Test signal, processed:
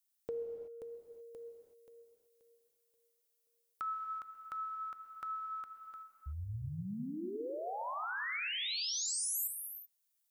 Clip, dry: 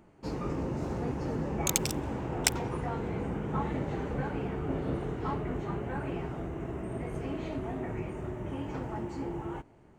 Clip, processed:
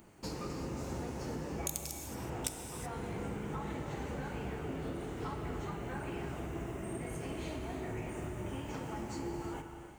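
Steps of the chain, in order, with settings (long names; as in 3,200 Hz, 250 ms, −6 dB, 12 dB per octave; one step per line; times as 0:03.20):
first-order pre-emphasis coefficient 0.8
downward compressor 5 to 1, threshold −51 dBFS
reverb whose tail is shaped and stops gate 400 ms flat, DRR 4.5 dB
level +13 dB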